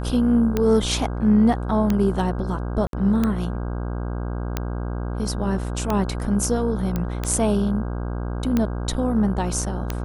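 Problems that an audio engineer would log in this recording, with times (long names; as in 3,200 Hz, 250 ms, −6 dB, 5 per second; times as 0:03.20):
mains buzz 60 Hz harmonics 27 −27 dBFS
scratch tick 45 rpm −9 dBFS
0:02.87–0:02.93: drop-out 62 ms
0:06.96: click −12 dBFS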